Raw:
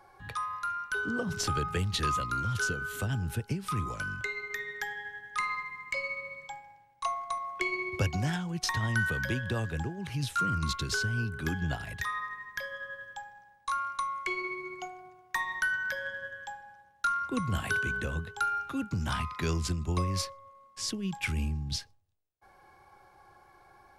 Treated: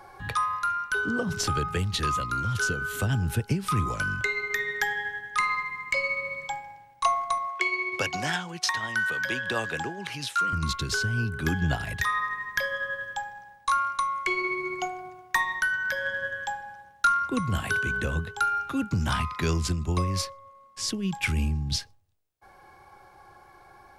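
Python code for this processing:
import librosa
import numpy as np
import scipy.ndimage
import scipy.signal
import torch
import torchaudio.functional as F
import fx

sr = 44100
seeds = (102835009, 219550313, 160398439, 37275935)

y = fx.weighting(x, sr, curve='A', at=(7.47, 10.53))
y = fx.rider(y, sr, range_db=4, speed_s=0.5)
y = y * librosa.db_to_amplitude(5.5)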